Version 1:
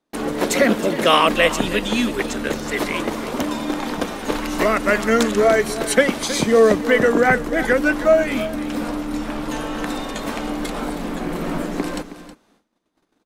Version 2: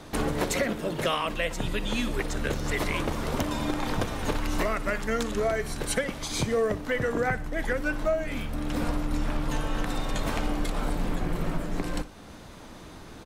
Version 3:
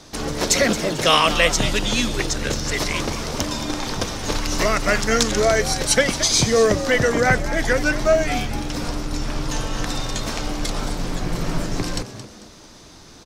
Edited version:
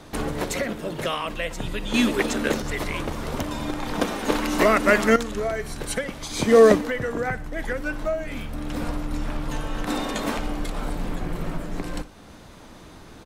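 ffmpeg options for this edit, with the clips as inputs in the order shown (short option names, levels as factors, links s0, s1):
-filter_complex "[0:a]asplit=4[s0][s1][s2][s3];[1:a]asplit=5[s4][s5][s6][s7][s8];[s4]atrim=end=1.942[s9];[s0]atrim=start=1.938:end=2.622[s10];[s5]atrim=start=2.618:end=3.952[s11];[s1]atrim=start=3.948:end=5.162[s12];[s6]atrim=start=5.158:end=6.52[s13];[s2]atrim=start=6.36:end=6.92[s14];[s7]atrim=start=6.76:end=9.872[s15];[s3]atrim=start=9.868:end=10.372[s16];[s8]atrim=start=10.368[s17];[s9][s10]acrossfade=d=0.004:c1=hsin:c2=hsin[s18];[s18][s11]acrossfade=d=0.004:c1=hsin:c2=hsin[s19];[s19][s12]acrossfade=d=0.004:c1=hsin:c2=hsin[s20];[s20][s13]acrossfade=d=0.004:c1=hsin:c2=hsin[s21];[s21][s14]acrossfade=d=0.16:c1=tri:c2=tri[s22];[s22][s15]acrossfade=d=0.16:c1=tri:c2=tri[s23];[s23][s16]acrossfade=d=0.004:c1=hsin:c2=hsin[s24];[s24][s17]acrossfade=d=0.004:c1=hsin:c2=hsin"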